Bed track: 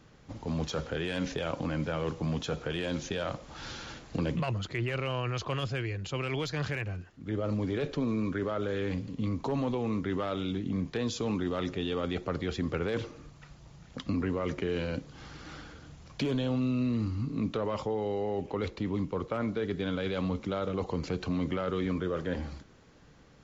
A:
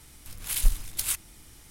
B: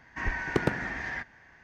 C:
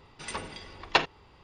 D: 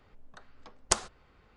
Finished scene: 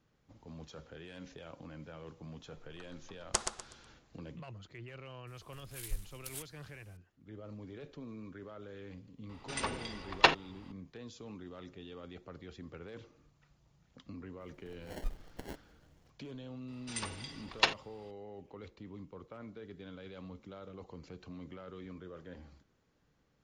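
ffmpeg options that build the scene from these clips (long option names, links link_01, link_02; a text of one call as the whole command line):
ffmpeg -i bed.wav -i cue0.wav -i cue1.wav -i cue2.wav -i cue3.wav -filter_complex "[1:a]asplit=2[link_01][link_02];[3:a]asplit=2[link_03][link_04];[0:a]volume=-16.5dB[link_05];[4:a]aecho=1:1:123|246|369|492:0.473|0.137|0.0398|0.0115[link_06];[link_02]acrusher=samples=36:mix=1:aa=0.000001[link_07];[link_04]highshelf=frequency=3000:gain=11[link_08];[link_06]atrim=end=1.56,asetpts=PTS-STARTPTS,volume=-6dB,afade=type=in:duration=0.004:curve=hsin,afade=type=out:start_time=1.556:duration=0.004:curve=hsin,adelay=2430[link_09];[link_01]atrim=end=1.7,asetpts=PTS-STARTPTS,volume=-16.5dB,afade=type=in:duration=0.004:curve=hsin,afade=type=out:start_time=1.696:duration=0.004:curve=hsin,adelay=5270[link_10];[link_03]atrim=end=1.43,asetpts=PTS-STARTPTS,afade=type=in:duration=0.004:curve=hsin,afade=type=out:start_time=1.426:duration=0.004:curve=hsin,adelay=9290[link_11];[link_07]atrim=end=1.7,asetpts=PTS-STARTPTS,volume=-16dB,afade=type=in:duration=0.004:curve=hsin,afade=type=out:start_time=1.696:duration=0.004:curve=hsin,adelay=14400[link_12];[link_08]atrim=end=1.43,asetpts=PTS-STARTPTS,volume=-8dB,afade=type=in:duration=0.004:curve=hsin,afade=type=out:start_time=1.426:duration=0.004:curve=hsin,adelay=735588S[link_13];[link_05][link_09][link_10][link_11][link_12][link_13]amix=inputs=6:normalize=0" out.wav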